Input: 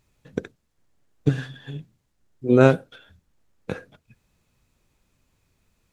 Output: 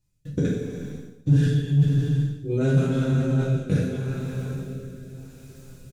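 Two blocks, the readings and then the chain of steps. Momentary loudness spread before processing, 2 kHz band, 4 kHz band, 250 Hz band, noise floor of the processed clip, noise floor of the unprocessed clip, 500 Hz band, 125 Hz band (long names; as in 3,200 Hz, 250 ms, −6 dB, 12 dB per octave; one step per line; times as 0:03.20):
22 LU, −5.0 dB, +1.5 dB, +2.0 dB, −52 dBFS, −72 dBFS, −5.5 dB, +8.0 dB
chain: coupled-rooms reverb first 0.56 s, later 4.8 s, from −18 dB, DRR −6 dB
rotating-speaker cabinet horn 0.85 Hz
comb filter 6.9 ms, depth 33%
noise gate with hold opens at −50 dBFS
reversed playback
downward compressor 5 to 1, threshold −29 dBFS, peak gain reduction 18 dB
reversed playback
bass and treble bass +13 dB, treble +12 dB
in parallel at −9 dB: soft clipping −20 dBFS, distortion −12 dB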